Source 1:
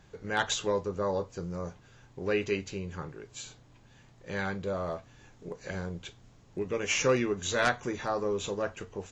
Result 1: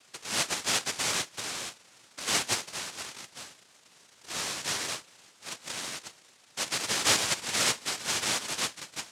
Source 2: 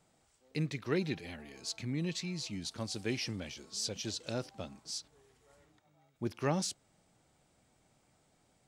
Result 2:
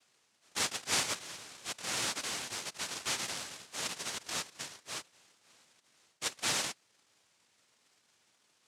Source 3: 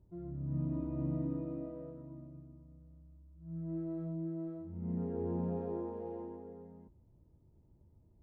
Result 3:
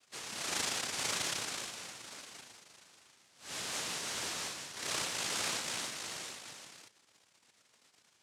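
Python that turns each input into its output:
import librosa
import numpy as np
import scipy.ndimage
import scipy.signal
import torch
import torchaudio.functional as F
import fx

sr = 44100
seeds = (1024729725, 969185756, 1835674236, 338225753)

y = fx.noise_vocoder(x, sr, seeds[0], bands=1)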